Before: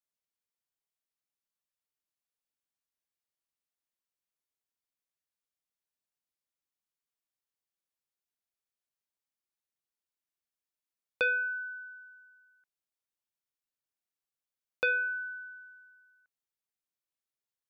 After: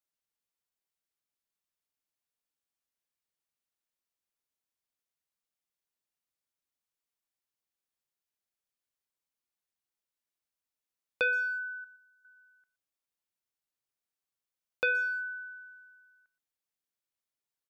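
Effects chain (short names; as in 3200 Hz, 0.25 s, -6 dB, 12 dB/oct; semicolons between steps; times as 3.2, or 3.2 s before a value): 11.84–12.25 band shelf 1500 Hz -14.5 dB; speakerphone echo 0.12 s, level -17 dB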